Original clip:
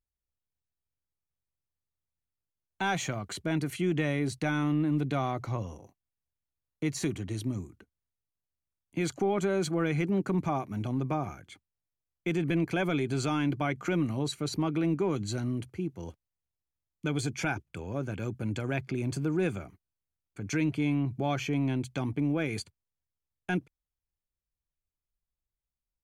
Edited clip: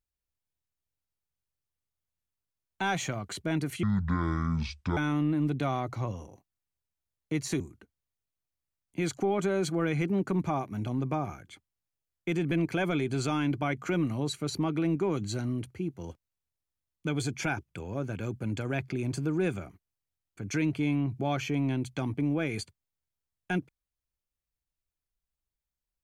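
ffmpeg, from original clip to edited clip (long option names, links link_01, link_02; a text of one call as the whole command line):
ffmpeg -i in.wav -filter_complex "[0:a]asplit=4[link_01][link_02][link_03][link_04];[link_01]atrim=end=3.834[link_05];[link_02]atrim=start=3.83:end=4.48,asetpts=PTS-STARTPTS,asetrate=25137,aresample=44100,atrim=end_sample=50289,asetpts=PTS-STARTPTS[link_06];[link_03]atrim=start=4.476:end=7.112[link_07];[link_04]atrim=start=7.588[link_08];[link_05][link_06]acrossfade=duration=0.004:curve1=hsin:curve2=hsin[link_09];[link_09][link_07]acrossfade=duration=0.004:curve1=hsin:curve2=hsin[link_10];[link_10][link_08]acrossfade=duration=0.004:curve1=hsin:curve2=hsin" out.wav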